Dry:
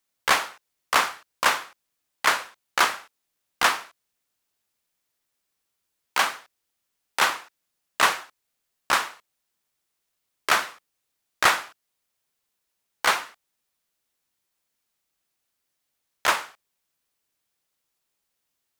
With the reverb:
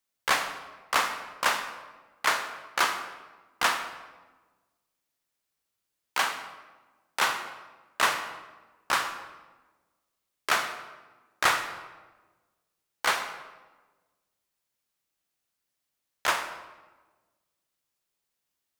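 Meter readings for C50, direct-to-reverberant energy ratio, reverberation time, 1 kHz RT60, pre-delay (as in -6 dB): 8.5 dB, 7.0 dB, 1.3 s, 1.2 s, 25 ms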